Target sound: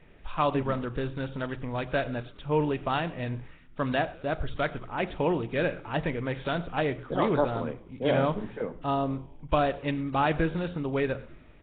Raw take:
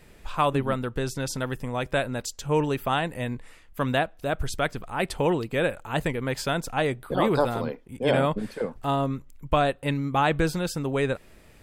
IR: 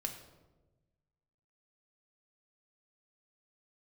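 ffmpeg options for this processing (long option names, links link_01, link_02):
-filter_complex "[0:a]asplit=6[link_01][link_02][link_03][link_04][link_05][link_06];[link_02]adelay=100,afreqshift=-94,volume=-22dB[link_07];[link_03]adelay=200,afreqshift=-188,volume=-26dB[link_08];[link_04]adelay=300,afreqshift=-282,volume=-30dB[link_09];[link_05]adelay=400,afreqshift=-376,volume=-34dB[link_10];[link_06]adelay=500,afreqshift=-470,volume=-38.1dB[link_11];[link_01][link_07][link_08][link_09][link_10][link_11]amix=inputs=6:normalize=0,asplit=2[link_12][link_13];[1:a]atrim=start_sample=2205,atrim=end_sample=6615[link_14];[link_13][link_14]afir=irnorm=-1:irlink=0,volume=-5dB[link_15];[link_12][link_15]amix=inputs=2:normalize=0,volume=-6dB" -ar 8000 -c:a nellymoser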